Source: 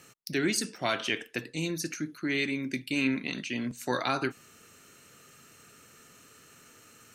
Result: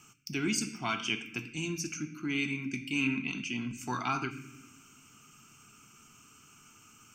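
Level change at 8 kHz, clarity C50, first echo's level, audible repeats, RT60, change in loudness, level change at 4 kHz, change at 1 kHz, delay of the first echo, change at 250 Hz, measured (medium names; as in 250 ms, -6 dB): -1.0 dB, 12.5 dB, no echo, no echo, 1.4 s, -2.5 dB, -3.0 dB, -1.5 dB, no echo, -2.5 dB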